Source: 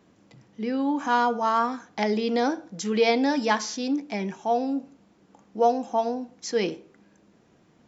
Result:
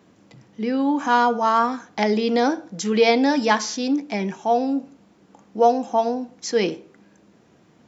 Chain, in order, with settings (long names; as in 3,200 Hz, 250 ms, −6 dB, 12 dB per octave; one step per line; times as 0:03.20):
high-pass filter 62 Hz
level +4.5 dB